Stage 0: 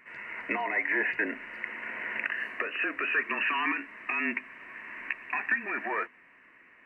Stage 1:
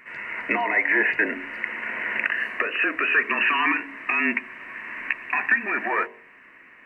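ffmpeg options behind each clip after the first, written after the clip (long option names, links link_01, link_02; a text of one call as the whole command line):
ffmpeg -i in.wav -af "bandreject=frequency=46.15:width_type=h:width=4,bandreject=frequency=92.3:width_type=h:width=4,bandreject=frequency=138.45:width_type=h:width=4,bandreject=frequency=184.6:width_type=h:width=4,bandreject=frequency=230.75:width_type=h:width=4,bandreject=frequency=276.9:width_type=h:width=4,bandreject=frequency=323.05:width_type=h:width=4,bandreject=frequency=369.2:width_type=h:width=4,bandreject=frequency=415.35:width_type=h:width=4,bandreject=frequency=461.5:width_type=h:width=4,bandreject=frequency=507.65:width_type=h:width=4,bandreject=frequency=553.8:width_type=h:width=4,bandreject=frequency=599.95:width_type=h:width=4,bandreject=frequency=646.1:width_type=h:width=4,bandreject=frequency=692.25:width_type=h:width=4,bandreject=frequency=738.4:width_type=h:width=4,bandreject=frequency=784.55:width_type=h:width=4,bandreject=frequency=830.7:width_type=h:width=4,bandreject=frequency=876.85:width_type=h:width=4,bandreject=frequency=923:width_type=h:width=4,bandreject=frequency=969.15:width_type=h:width=4,bandreject=frequency=1015.3:width_type=h:width=4,bandreject=frequency=1061.45:width_type=h:width=4,volume=7.5dB" out.wav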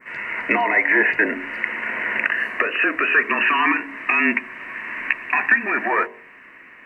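ffmpeg -i in.wav -af "adynamicequalizer=threshold=0.02:dfrequency=2900:dqfactor=1.1:tfrequency=2900:tqfactor=1.1:attack=5:release=100:ratio=0.375:range=2:mode=cutabove:tftype=bell,volume=5dB" out.wav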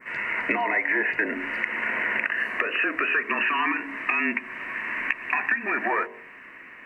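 ffmpeg -i in.wav -af "acompressor=threshold=-22dB:ratio=4" out.wav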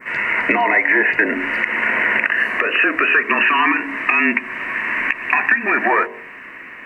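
ffmpeg -i in.wav -af "alimiter=level_in=10dB:limit=-1dB:release=50:level=0:latency=1,volume=-1dB" out.wav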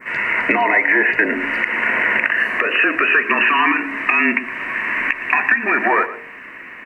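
ffmpeg -i in.wav -af "aecho=1:1:115:0.178" out.wav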